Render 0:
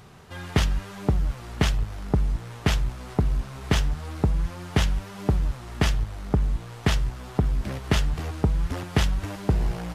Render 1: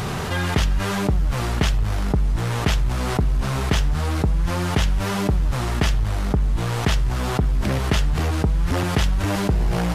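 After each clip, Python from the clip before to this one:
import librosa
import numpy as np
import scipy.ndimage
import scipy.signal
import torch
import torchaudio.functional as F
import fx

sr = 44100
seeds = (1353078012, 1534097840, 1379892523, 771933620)

y = fx.env_flatten(x, sr, amount_pct=70)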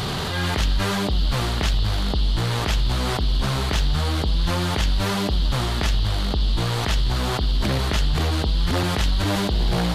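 y = fx.transient(x, sr, attack_db=-11, sustain_db=3)
y = fx.dmg_noise_band(y, sr, seeds[0], low_hz=2900.0, high_hz=4700.0, level_db=-35.0)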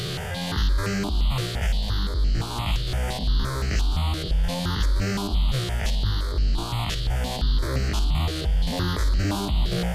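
y = fx.spec_steps(x, sr, hold_ms=50)
y = y + 10.0 ** (-17.0 / 20.0) * np.pad(y, (int(333 * sr / 1000.0), 0))[:len(y)]
y = fx.phaser_held(y, sr, hz=5.8, low_hz=240.0, high_hz=3500.0)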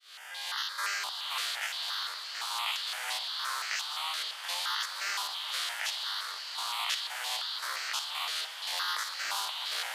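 y = fx.fade_in_head(x, sr, length_s=0.71)
y = scipy.signal.sosfilt(scipy.signal.butter(4, 970.0, 'highpass', fs=sr, output='sos'), y)
y = fx.echo_diffused(y, sr, ms=454, feedback_pct=72, wet_db=-13.0)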